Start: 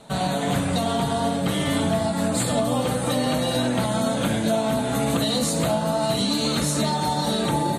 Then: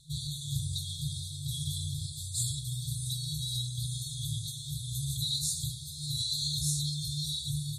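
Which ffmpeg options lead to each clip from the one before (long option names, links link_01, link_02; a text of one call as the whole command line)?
ffmpeg -i in.wav -af "afftfilt=real='re*(1-between(b*sr/4096,160,3300))':imag='im*(1-between(b*sr/4096,160,3300))':win_size=4096:overlap=0.75,volume=-4.5dB" out.wav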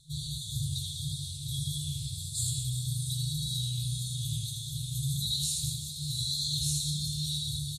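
ffmpeg -i in.wav -af "flanger=delay=8.6:depth=8.1:regen=85:speed=1.7:shape=triangular,aecho=1:1:80|200|380|650|1055:0.631|0.398|0.251|0.158|0.1,volume=3.5dB" out.wav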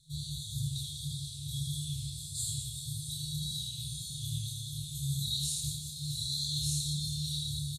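ffmpeg -i in.wav -filter_complex "[0:a]asuperstop=centerf=740:order=4:qfactor=0.74,asplit=2[link_01][link_02];[link_02]adelay=28,volume=-2dB[link_03];[link_01][link_03]amix=inputs=2:normalize=0,volume=-5dB" out.wav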